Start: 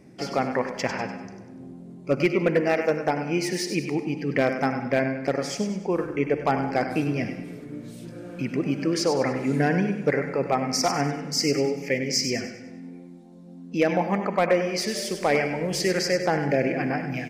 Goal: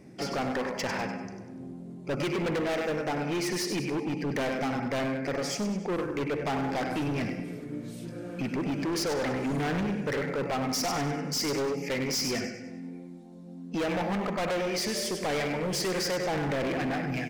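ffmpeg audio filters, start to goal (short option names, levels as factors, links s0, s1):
-af "asoftclip=type=hard:threshold=0.0447"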